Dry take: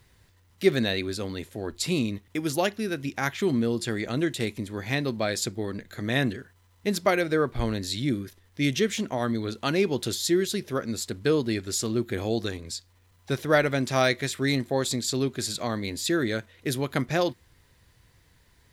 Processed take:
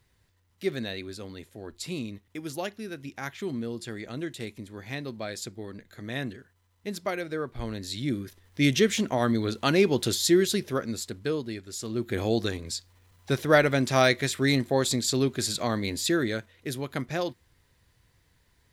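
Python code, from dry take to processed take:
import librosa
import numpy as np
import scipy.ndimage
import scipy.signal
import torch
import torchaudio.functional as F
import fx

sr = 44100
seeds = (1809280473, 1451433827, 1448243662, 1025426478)

y = fx.gain(x, sr, db=fx.line((7.51, -8.0), (8.63, 2.5), (10.53, 2.5), (11.7, -10.0), (12.19, 1.5), (15.98, 1.5), (16.67, -5.0)))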